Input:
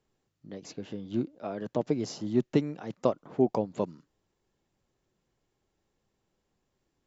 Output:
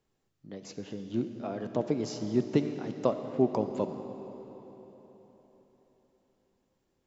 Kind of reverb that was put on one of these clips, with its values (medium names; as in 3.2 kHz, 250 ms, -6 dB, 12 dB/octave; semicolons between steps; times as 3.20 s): algorithmic reverb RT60 4.1 s, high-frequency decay 0.85×, pre-delay 10 ms, DRR 7.5 dB; trim -1 dB